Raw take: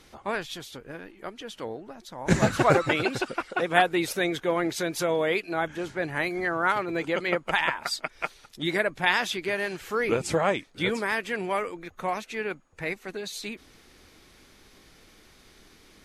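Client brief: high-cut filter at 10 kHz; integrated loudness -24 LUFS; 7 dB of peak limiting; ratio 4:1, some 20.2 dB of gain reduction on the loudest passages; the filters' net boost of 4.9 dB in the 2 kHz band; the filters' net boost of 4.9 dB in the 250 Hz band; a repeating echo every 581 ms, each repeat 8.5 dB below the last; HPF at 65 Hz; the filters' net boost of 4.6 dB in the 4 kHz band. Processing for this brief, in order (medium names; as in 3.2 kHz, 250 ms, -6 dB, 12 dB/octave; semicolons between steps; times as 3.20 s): high-pass 65 Hz; low-pass 10 kHz; peaking EQ 250 Hz +7.5 dB; peaking EQ 2 kHz +5 dB; peaking EQ 4 kHz +4 dB; compression 4:1, threshold -38 dBFS; peak limiter -27 dBFS; feedback delay 581 ms, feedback 38%, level -8.5 dB; trim +15.5 dB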